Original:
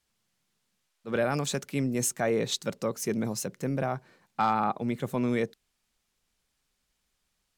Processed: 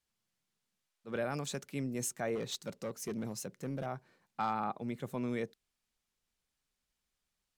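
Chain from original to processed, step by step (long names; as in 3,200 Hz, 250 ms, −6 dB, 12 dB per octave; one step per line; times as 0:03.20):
0:02.35–0:03.86: gain into a clipping stage and back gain 24 dB
level −8.5 dB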